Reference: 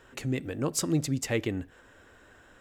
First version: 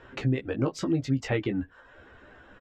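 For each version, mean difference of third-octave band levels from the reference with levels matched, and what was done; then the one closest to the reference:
5.0 dB: reverb reduction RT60 0.64 s
downward compressor, threshold −29 dBFS, peak gain reduction 7.5 dB
high-frequency loss of the air 210 metres
ambience of single reflections 15 ms −5 dB, 25 ms −11 dB
level +5.5 dB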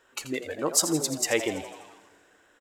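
7.5 dB: noise reduction from a noise print of the clip's start 11 dB
bass and treble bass −14 dB, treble +3 dB
on a send: echo with shifted repeats 83 ms, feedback 62%, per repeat +100 Hz, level −11.5 dB
on the sum: four-comb reverb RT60 2.2 s, combs from 31 ms, DRR 19.5 dB
level +5.5 dB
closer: first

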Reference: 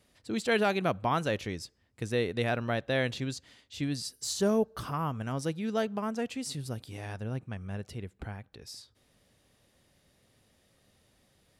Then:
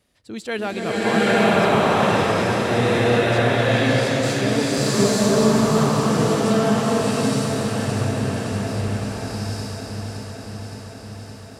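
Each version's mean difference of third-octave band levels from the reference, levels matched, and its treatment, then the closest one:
13.5 dB: delay that swaps between a low-pass and a high-pass 283 ms, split 1,300 Hz, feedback 85%, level −5 dB
slow-attack reverb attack 920 ms, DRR −11 dB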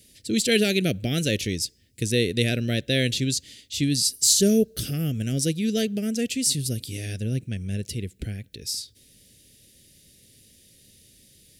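7.0 dB: Butterworth band-reject 1,000 Hz, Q 0.53
high-shelf EQ 4,700 Hz +11.5 dB
level +9 dB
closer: second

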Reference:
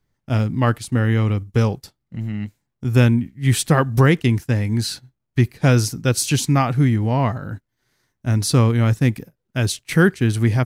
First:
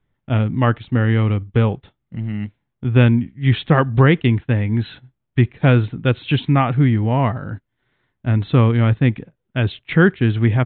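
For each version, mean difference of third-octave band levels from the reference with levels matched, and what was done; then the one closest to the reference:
3.5 dB: downsampling to 8,000 Hz
level +1.5 dB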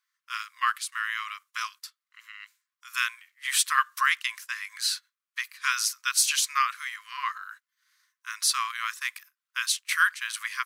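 18.5 dB: linear-phase brick-wall high-pass 1,000 Hz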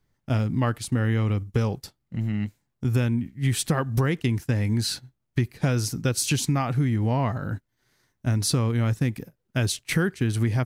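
2.5 dB: downward compressor, threshold −20 dBFS, peak gain reduction 11 dB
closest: third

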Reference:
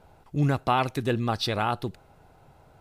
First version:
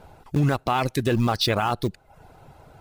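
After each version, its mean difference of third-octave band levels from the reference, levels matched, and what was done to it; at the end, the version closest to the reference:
3.5 dB: in parallel at −6.5 dB: centre clipping without the shift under −27.5 dBFS
on the sum: reverb reduction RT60 0.51 s
brickwall limiter −20 dBFS, peak gain reduction 11.5 dB
level +7.5 dB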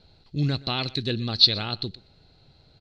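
5.5 dB: low-pass with resonance 4,200 Hz, resonance Q 14
parametric band 940 Hz −12.5 dB 1.6 octaves
on a send: single-tap delay 122 ms −21.5 dB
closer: first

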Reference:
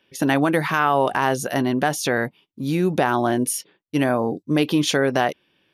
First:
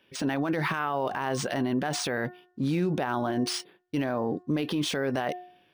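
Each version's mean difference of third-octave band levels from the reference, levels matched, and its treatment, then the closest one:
4.5 dB: hum removal 360.4 Hz, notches 5
brickwall limiter −19 dBFS, peak gain reduction 12 dB
linearly interpolated sample-rate reduction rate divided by 3×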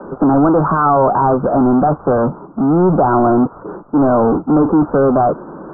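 12.5 dB: Butterworth high-pass 150 Hz 36 dB per octave
power curve on the samples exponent 0.35
Butterworth low-pass 1,400 Hz 96 dB per octave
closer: first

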